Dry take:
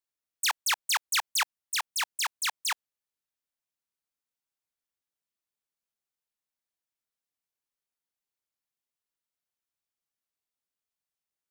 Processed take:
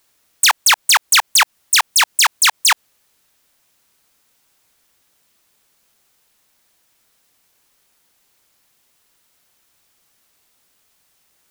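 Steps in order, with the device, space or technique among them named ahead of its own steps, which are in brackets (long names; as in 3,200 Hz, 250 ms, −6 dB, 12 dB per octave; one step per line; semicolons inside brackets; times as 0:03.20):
loud club master (downward compressor 2 to 1, threshold −31 dBFS, peak gain reduction 5 dB; hard clipping −26.5 dBFS, distortion −22 dB; boost into a limiter +35.5 dB)
level −6 dB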